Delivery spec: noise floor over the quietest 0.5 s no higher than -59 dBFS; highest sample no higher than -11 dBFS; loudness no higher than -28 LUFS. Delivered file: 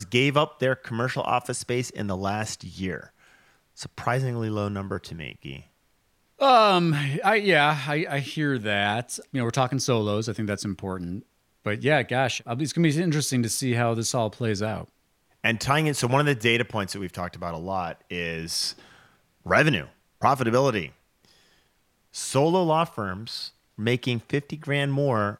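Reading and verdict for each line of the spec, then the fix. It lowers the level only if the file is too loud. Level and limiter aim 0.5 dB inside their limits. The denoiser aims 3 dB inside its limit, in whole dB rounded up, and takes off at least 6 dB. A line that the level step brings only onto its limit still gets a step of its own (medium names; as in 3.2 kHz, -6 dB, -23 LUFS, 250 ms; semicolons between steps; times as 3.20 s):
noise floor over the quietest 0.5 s -67 dBFS: pass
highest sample -6.0 dBFS: fail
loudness -25.0 LUFS: fail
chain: trim -3.5 dB; peak limiter -11.5 dBFS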